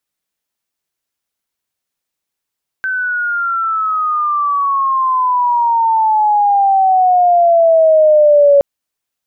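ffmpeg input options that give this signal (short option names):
-f lavfi -i "aevalsrc='pow(10,(-4.5+10.5*(t/5.77-1))/20)*sin(2*PI*1540*5.77/(-17.5*log(2)/12)*(exp(-17.5*log(2)/12*t/5.77)-1))':d=5.77:s=44100"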